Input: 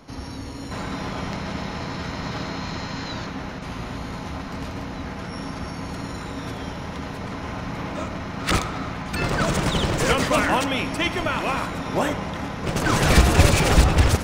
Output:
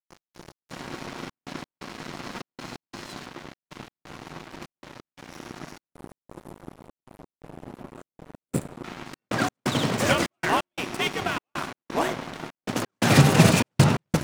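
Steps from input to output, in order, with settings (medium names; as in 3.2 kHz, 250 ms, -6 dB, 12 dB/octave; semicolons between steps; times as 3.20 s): on a send at -16 dB: reverberation RT60 1.7 s, pre-delay 4 ms; on the sum: time-frequency box 5.94–8.84 s, 580–7100 Hz -16 dB; frequency shift +81 Hz; crossover distortion -30 dBFS; trance gate "xx..xx..xxxxx" 174 bpm -60 dB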